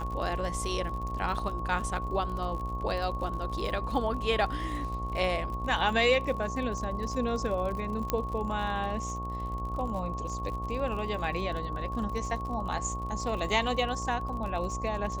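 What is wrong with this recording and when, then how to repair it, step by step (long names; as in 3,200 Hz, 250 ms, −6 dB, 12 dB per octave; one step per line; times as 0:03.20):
mains buzz 60 Hz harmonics 20 −37 dBFS
surface crackle 51 per second −37 dBFS
whistle 1,100 Hz −36 dBFS
0:08.10: click −12 dBFS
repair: click removal
hum removal 60 Hz, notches 20
notch filter 1,100 Hz, Q 30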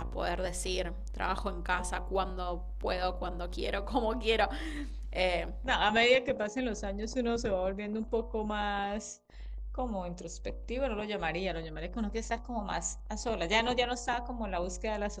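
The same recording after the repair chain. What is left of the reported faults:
none of them is left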